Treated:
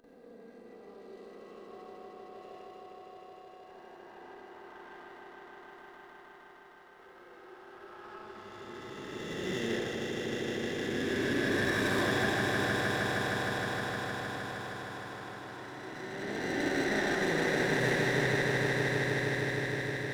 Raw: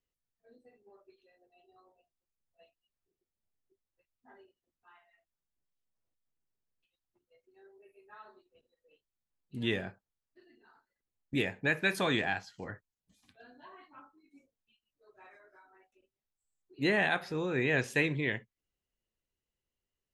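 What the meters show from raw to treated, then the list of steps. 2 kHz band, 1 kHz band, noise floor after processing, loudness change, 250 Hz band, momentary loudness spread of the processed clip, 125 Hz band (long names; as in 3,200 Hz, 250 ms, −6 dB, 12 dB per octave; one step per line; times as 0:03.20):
+4.0 dB, +6.5 dB, −54 dBFS, 0.0 dB, +4.5 dB, 22 LU, +5.0 dB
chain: peak hold with a rise ahead of every peak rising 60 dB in 2.99 s
noise gate with hold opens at −56 dBFS
brickwall limiter −18.5 dBFS, peak gain reduction 7.5 dB
upward compression, threshold −41 dBFS
flanger 0.3 Hz, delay 3.2 ms, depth 6.7 ms, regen +66%
parametric band 2,500 Hz −12.5 dB 0.27 octaves
echo that builds up and dies away 155 ms, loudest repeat 5, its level −7.5 dB
four-comb reverb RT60 1.9 s, combs from 31 ms, DRR −1 dB
windowed peak hold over 5 samples
level −2 dB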